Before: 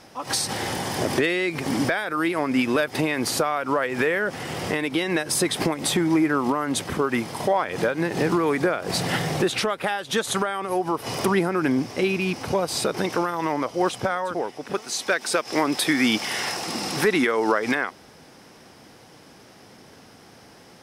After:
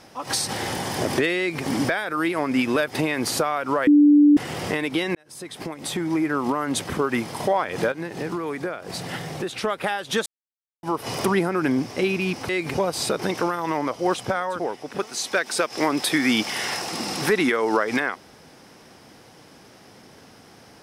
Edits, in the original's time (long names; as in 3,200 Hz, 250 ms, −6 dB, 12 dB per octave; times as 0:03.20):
0:01.38–0:01.63: duplicate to 0:12.49
0:03.87–0:04.37: beep over 293 Hz −10 dBFS
0:05.15–0:06.63: fade in
0:07.92–0:09.64: clip gain −7 dB
0:10.26–0:10.83: silence